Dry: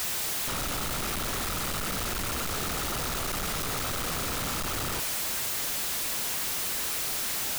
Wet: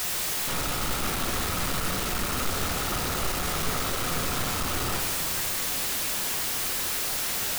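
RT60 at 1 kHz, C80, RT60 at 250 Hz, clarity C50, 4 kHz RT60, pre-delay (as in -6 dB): 2.9 s, 6.5 dB, 3.7 s, 5.0 dB, 1.7 s, 5 ms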